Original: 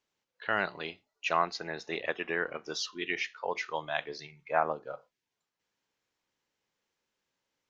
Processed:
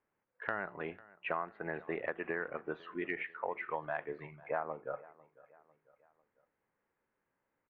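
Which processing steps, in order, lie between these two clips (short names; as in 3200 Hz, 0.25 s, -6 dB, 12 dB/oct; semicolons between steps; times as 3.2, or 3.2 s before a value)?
inverse Chebyshev low-pass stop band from 4900 Hz, stop band 50 dB; compressor 6:1, threshold -36 dBFS, peak gain reduction 14.5 dB; feedback echo 0.498 s, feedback 47%, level -21.5 dB; gain +3 dB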